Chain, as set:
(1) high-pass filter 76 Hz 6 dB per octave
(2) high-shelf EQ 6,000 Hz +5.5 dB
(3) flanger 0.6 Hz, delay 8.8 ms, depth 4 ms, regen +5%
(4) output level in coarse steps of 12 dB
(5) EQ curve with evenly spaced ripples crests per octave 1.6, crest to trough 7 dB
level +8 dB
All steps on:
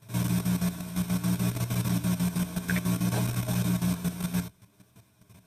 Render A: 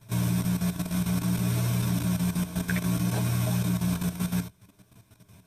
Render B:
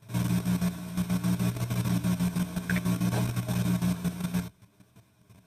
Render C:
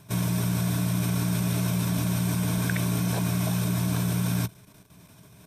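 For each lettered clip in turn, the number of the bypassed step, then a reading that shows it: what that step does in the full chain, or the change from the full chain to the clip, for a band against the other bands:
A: 1, change in crest factor −2.0 dB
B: 2, 8 kHz band −3.5 dB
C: 3, 250 Hz band −2.0 dB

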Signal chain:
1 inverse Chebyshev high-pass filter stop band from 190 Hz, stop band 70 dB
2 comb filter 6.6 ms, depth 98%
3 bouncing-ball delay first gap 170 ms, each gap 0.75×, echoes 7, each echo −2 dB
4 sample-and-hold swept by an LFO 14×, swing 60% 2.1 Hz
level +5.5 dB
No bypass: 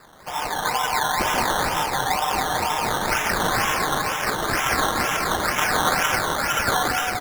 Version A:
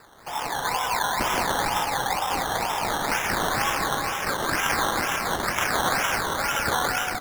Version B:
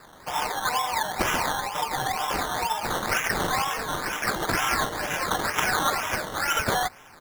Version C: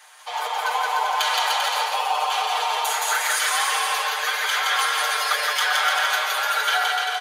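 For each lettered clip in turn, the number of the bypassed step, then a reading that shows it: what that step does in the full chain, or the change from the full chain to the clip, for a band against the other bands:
2, change in integrated loudness −2.5 LU
3, change in integrated loudness −4.0 LU
4, 500 Hz band −6.5 dB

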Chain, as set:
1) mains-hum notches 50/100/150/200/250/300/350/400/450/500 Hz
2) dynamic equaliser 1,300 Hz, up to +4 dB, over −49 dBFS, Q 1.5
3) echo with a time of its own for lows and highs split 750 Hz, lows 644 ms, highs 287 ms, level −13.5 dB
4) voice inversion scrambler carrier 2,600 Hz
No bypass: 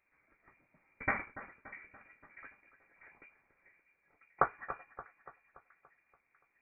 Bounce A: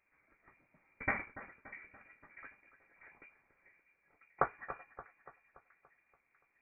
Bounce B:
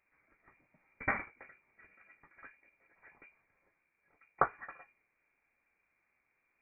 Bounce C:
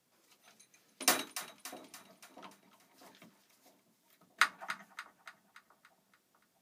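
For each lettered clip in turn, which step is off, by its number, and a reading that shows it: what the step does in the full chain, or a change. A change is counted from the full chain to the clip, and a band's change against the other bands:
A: 2, change in integrated loudness −2.5 LU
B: 3, change in momentary loudness spread −2 LU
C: 4, 125 Hz band −10.5 dB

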